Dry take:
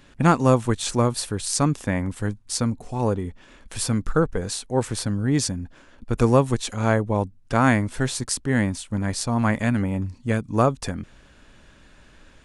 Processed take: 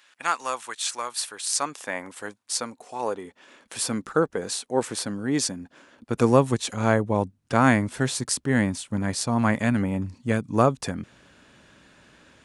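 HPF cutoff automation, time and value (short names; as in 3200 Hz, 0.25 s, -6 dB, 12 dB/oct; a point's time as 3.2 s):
1.03 s 1200 Hz
2.02 s 530 Hz
3.05 s 530 Hz
3.78 s 250 Hz
5.55 s 250 Hz
6.58 s 110 Hz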